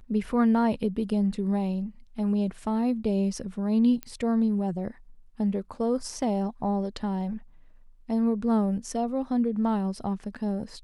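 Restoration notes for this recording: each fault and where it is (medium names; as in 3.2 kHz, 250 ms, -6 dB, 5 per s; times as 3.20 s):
4.03 s: pop -19 dBFS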